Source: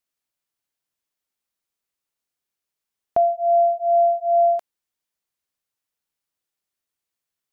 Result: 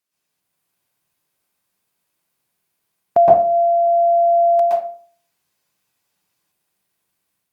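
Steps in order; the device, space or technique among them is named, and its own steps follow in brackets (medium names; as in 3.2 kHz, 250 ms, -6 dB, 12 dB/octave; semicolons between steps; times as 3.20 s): far-field microphone of a smart speaker (reverberation RT60 0.45 s, pre-delay 114 ms, DRR -7.5 dB; high-pass 82 Hz 12 dB/octave; level rider gain up to 4.5 dB; trim +2 dB; Opus 48 kbps 48 kHz)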